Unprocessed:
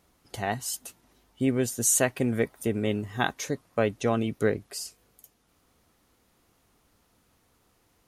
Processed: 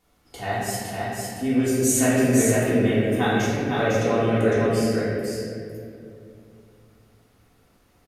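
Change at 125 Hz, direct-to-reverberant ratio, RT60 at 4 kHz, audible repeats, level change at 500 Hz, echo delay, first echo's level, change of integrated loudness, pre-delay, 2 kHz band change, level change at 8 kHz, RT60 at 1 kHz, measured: +8.0 dB, -12.0 dB, 1.4 s, 1, +7.0 dB, 0.505 s, -2.5 dB, +5.5 dB, 3 ms, +6.0 dB, +2.0 dB, 2.0 s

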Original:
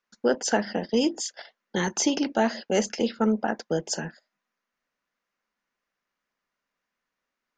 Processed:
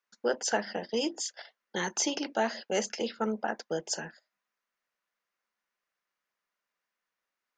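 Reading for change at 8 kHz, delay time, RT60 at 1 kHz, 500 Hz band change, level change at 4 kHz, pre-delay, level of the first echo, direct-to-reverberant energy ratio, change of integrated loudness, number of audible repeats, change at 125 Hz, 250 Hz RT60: -3.0 dB, none, none, -5.5 dB, -3.0 dB, none, none, none, -5.5 dB, none, -10.5 dB, none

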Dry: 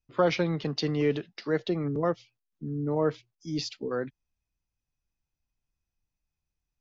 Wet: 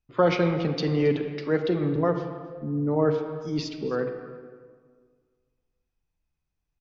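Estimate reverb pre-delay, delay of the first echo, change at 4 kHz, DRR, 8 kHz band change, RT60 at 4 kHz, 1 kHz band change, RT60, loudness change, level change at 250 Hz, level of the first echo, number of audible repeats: 35 ms, 0.271 s, -0.5 dB, 6.0 dB, n/a, 1.0 s, +3.5 dB, 1.7 s, +3.5 dB, +4.5 dB, -19.5 dB, 1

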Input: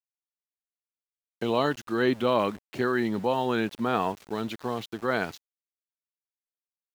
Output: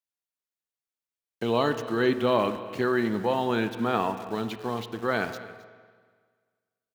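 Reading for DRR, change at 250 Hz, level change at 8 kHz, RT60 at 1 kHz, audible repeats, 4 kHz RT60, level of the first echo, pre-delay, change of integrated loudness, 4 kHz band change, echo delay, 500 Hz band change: 9.0 dB, +0.5 dB, n/a, 1.6 s, 1, 1.6 s, -18.5 dB, 9 ms, +1.0 dB, +0.5 dB, 0.266 s, +1.0 dB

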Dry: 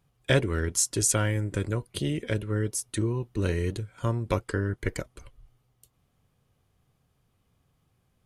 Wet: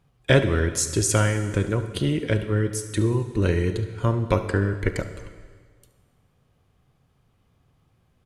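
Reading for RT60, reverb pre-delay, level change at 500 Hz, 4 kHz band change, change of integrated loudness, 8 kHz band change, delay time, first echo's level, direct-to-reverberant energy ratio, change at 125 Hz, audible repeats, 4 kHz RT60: 1.7 s, 20 ms, +6.0 dB, +3.5 dB, +4.5 dB, 0.0 dB, 72 ms, -17.0 dB, 9.0 dB, +5.5 dB, 1, 1.5 s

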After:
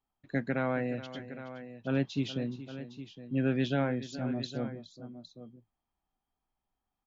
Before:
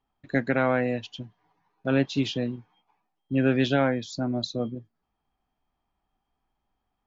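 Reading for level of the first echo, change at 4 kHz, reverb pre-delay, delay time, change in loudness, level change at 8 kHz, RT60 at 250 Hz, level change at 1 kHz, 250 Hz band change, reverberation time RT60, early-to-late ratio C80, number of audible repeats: -14.5 dB, -8.0 dB, none, 0.421 s, -7.5 dB, n/a, none, -8.0 dB, -6.0 dB, none, none, 2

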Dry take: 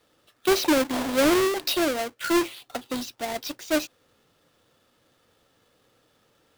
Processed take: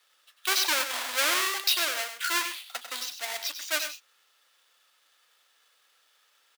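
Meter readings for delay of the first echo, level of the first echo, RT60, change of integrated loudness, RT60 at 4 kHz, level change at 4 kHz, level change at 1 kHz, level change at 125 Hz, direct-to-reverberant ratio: 97 ms, -9.0 dB, none, -2.5 dB, none, +3.0 dB, -3.5 dB, under -35 dB, none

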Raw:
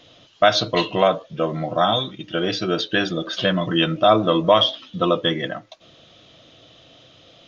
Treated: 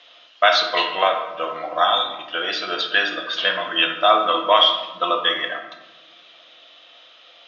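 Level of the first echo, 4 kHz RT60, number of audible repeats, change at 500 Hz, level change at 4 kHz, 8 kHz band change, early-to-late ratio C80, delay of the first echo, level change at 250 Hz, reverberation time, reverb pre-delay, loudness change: none, 0.65 s, none, -3.5 dB, +3.5 dB, n/a, 9.0 dB, none, -12.0 dB, 1.1 s, 4 ms, +1.0 dB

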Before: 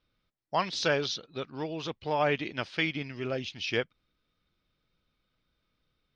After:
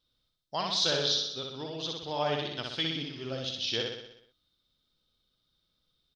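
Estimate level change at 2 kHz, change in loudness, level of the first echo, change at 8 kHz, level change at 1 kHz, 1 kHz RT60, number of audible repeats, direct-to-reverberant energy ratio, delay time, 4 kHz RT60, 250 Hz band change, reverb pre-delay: -6.5 dB, +0.5 dB, -3.0 dB, +5.0 dB, -3.5 dB, none, 7, none, 62 ms, none, -3.5 dB, none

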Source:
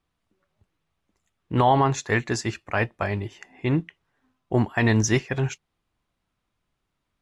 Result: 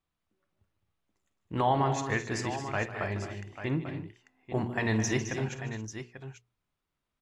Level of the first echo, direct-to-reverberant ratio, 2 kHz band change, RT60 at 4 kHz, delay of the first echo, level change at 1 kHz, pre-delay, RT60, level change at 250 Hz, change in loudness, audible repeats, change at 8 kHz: -13.0 dB, none, -6.5 dB, none, 50 ms, -6.5 dB, none, none, -7.0 dB, -7.5 dB, 5, -6.5 dB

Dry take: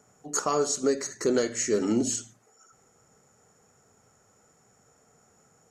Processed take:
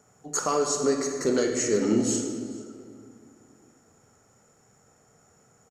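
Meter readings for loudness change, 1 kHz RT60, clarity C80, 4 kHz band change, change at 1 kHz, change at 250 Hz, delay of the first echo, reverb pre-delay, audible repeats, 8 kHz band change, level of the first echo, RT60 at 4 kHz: +1.0 dB, 2.1 s, 6.0 dB, +1.0 dB, +1.5 dB, +2.5 dB, 0.434 s, 22 ms, 1, +1.0 dB, -21.5 dB, 1.4 s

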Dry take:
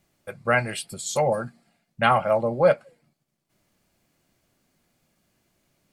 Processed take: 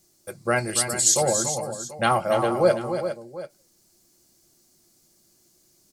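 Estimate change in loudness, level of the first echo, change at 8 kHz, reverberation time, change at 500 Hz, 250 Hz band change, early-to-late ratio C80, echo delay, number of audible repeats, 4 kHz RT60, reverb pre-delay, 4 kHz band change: +1.0 dB, -7.5 dB, +14.5 dB, none, 0.0 dB, +3.0 dB, none, 0.285 s, 3, none, none, +5.5 dB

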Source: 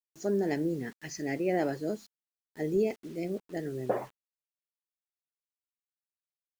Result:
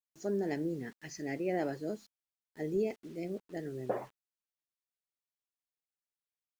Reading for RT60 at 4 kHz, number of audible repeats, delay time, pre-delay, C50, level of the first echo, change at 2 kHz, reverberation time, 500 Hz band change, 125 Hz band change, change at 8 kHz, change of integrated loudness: none, none, none, none, none, none, -4.5 dB, none, -4.5 dB, -4.5 dB, -5.5 dB, -4.5 dB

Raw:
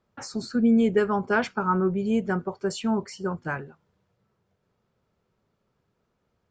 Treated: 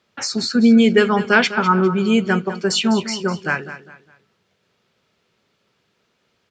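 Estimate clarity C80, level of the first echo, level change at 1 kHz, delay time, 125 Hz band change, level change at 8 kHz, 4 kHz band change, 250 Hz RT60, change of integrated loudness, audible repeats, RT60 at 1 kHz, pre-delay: none, -13.0 dB, +7.5 dB, 0.202 s, +7.5 dB, +14.0 dB, +17.5 dB, none, +8.5 dB, 3, none, none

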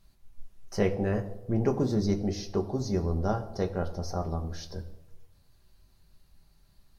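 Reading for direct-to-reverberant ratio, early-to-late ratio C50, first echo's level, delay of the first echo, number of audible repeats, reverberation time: 3.5 dB, 13.5 dB, none, none, none, 1.0 s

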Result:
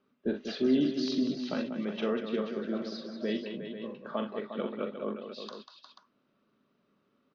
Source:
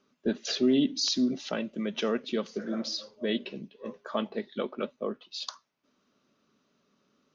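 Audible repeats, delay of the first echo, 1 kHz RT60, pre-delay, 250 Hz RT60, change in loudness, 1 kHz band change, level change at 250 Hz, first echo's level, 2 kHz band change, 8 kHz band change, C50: 4, 42 ms, none, none, none, -2.5 dB, -2.0 dB, -1.0 dB, -7.0 dB, -3.0 dB, n/a, none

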